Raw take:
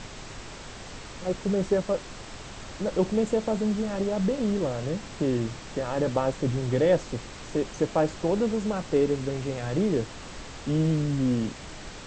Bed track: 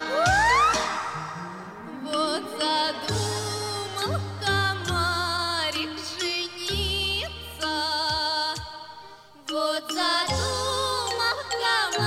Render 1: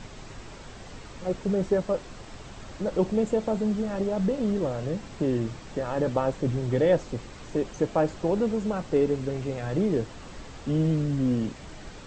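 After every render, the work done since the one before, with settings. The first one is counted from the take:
broadband denoise 6 dB, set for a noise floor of −42 dBFS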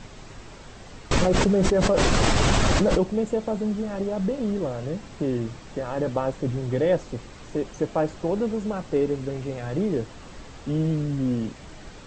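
0:01.11–0:03.03: envelope flattener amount 100%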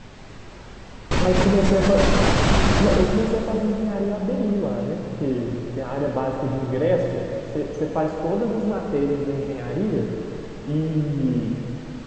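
high-frequency loss of the air 73 metres
dense smooth reverb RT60 3 s, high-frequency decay 0.9×, DRR 0.5 dB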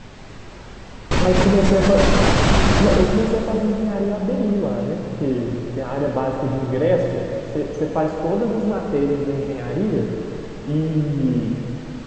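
level +2.5 dB
brickwall limiter −3 dBFS, peak gain reduction 0.5 dB

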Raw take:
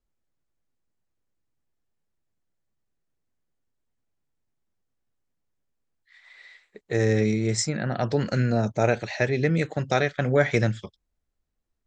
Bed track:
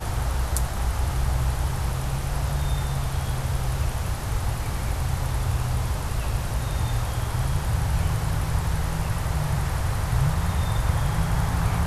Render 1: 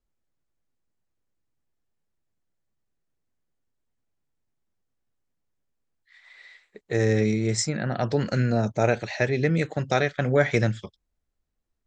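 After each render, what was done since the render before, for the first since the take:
no processing that can be heard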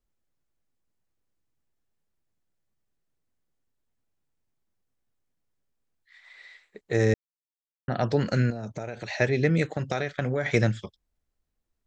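0:07.14–0:07.88: silence
0:08.50–0:09.12: downward compressor 16 to 1, threshold −29 dBFS
0:09.66–0:10.46: downward compressor 10 to 1, threshold −22 dBFS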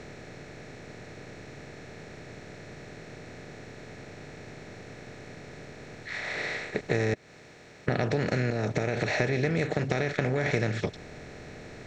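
compressor on every frequency bin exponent 0.4
downward compressor 4 to 1, threshold −24 dBFS, peak gain reduction 9.5 dB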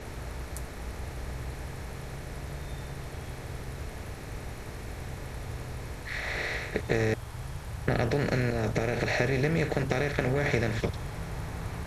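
mix in bed track −14 dB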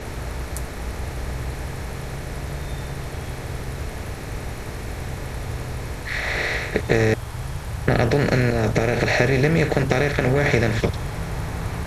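level +8.5 dB
brickwall limiter −2 dBFS, peak gain reduction 2 dB

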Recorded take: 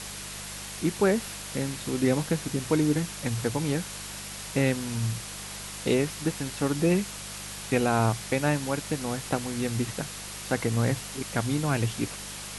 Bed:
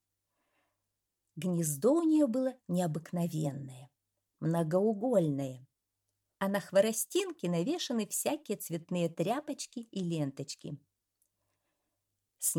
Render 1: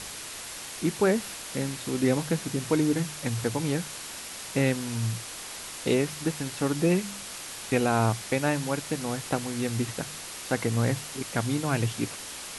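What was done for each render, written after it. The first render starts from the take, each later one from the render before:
hum removal 50 Hz, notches 4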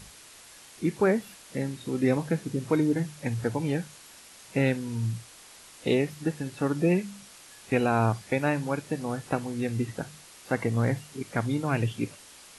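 noise reduction from a noise print 11 dB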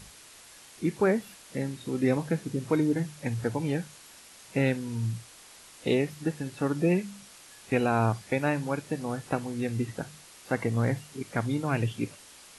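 level −1 dB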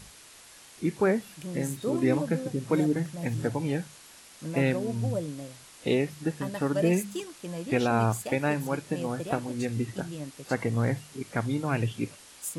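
mix in bed −4.5 dB

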